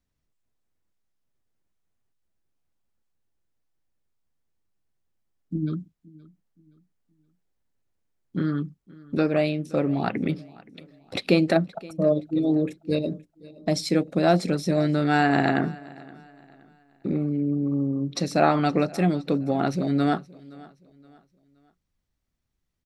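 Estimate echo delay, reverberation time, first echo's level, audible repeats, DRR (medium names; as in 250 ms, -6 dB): 521 ms, no reverb, -22.0 dB, 2, no reverb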